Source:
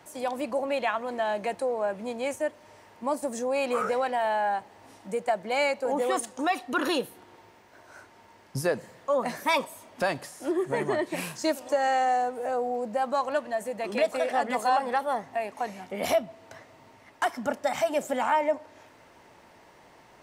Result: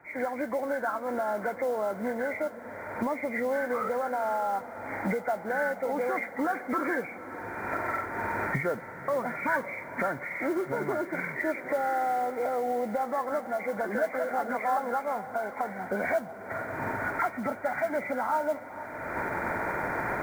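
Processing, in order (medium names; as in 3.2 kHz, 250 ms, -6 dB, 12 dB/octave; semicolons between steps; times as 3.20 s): knee-point frequency compression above 1.3 kHz 4:1; recorder AGC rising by 39 dB/s; modulation noise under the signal 26 dB; echo that smears into a reverb 512 ms, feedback 69%, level -15.5 dB; trim -4 dB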